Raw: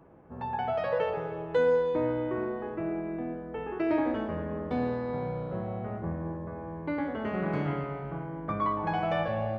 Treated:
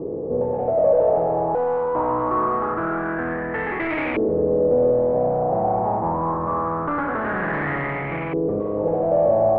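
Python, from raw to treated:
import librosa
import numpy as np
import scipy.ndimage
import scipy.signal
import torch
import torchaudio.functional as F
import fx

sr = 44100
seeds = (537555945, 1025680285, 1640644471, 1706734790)

y = fx.bin_compress(x, sr, power=0.6)
y = fx.notch(y, sr, hz=1500.0, q=6.5)
y = 10.0 ** (-30.5 / 20.0) * np.tanh(y / 10.0 ** (-30.5 / 20.0))
y = fx.filter_lfo_lowpass(y, sr, shape='saw_up', hz=0.24, low_hz=410.0, high_hz=2400.0, q=6.6)
y = F.gain(torch.from_numpy(y), 6.5).numpy()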